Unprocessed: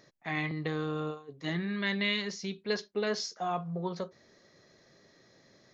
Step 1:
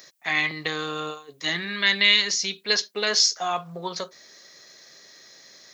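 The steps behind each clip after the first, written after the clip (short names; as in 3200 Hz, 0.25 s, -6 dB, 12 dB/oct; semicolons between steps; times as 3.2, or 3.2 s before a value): tilt +4.5 dB/oct; gain +7.5 dB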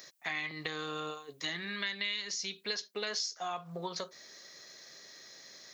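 compressor 4:1, threshold -32 dBFS, peak gain reduction 15.5 dB; gain -3 dB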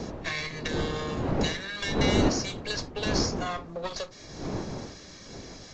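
minimum comb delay 1.8 ms; wind noise 400 Hz -37 dBFS; gain +5.5 dB; Vorbis 48 kbps 16000 Hz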